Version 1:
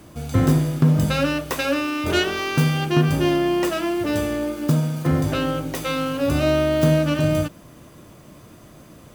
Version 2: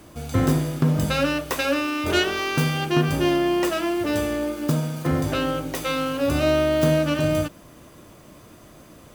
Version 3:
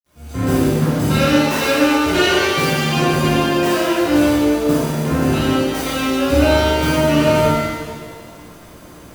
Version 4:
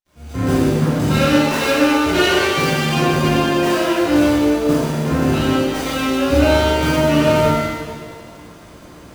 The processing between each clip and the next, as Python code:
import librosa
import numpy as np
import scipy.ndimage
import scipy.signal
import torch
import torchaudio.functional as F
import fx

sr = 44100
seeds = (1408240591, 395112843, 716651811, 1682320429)

y1 = fx.peak_eq(x, sr, hz=140.0, db=-4.5, octaves=1.5)
y2 = fx.fade_in_head(y1, sr, length_s=0.58)
y2 = fx.quant_dither(y2, sr, seeds[0], bits=10, dither='none')
y2 = fx.rev_shimmer(y2, sr, seeds[1], rt60_s=1.6, semitones=7, shimmer_db=-8, drr_db=-10.0)
y2 = F.gain(torch.from_numpy(y2), -4.0).numpy()
y3 = fx.running_max(y2, sr, window=3)